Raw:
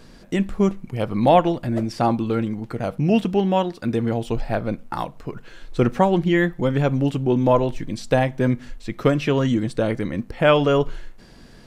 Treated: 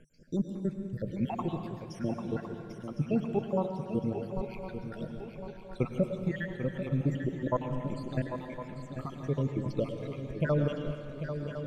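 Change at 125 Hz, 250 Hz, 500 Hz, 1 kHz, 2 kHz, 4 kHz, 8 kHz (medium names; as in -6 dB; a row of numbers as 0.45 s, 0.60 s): -9.5 dB, -12.0 dB, -13.5 dB, -17.5 dB, -15.5 dB, -19.0 dB, no reading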